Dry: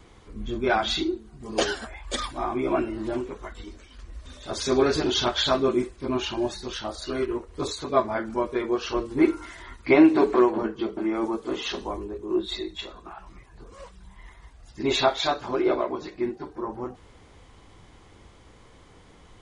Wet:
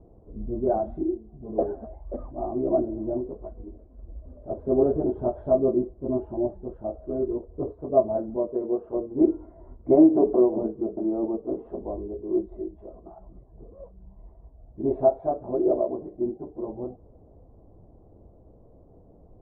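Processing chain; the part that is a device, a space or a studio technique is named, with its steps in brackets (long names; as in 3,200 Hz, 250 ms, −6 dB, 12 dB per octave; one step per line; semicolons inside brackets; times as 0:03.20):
0:08.36–0:09.21: high-pass filter 180 Hz 6 dB per octave
under water (low-pass filter 630 Hz 24 dB per octave; parametric band 650 Hz +8.5 dB 0.3 octaves)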